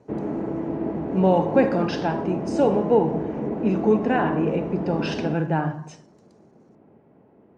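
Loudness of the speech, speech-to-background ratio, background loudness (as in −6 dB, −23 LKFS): −23.5 LKFS, 5.0 dB, −28.5 LKFS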